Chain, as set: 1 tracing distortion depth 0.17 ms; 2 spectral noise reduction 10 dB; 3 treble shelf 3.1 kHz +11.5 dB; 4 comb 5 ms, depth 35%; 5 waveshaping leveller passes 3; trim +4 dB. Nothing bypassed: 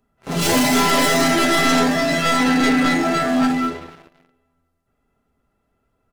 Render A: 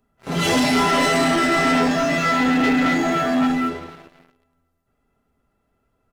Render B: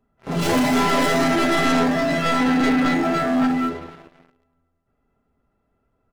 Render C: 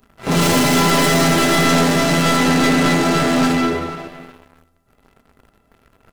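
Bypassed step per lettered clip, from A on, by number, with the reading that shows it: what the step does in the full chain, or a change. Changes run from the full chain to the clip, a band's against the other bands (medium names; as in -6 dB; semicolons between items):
1, 8 kHz band -5.0 dB; 3, 8 kHz band -7.5 dB; 2, 125 Hz band +6.5 dB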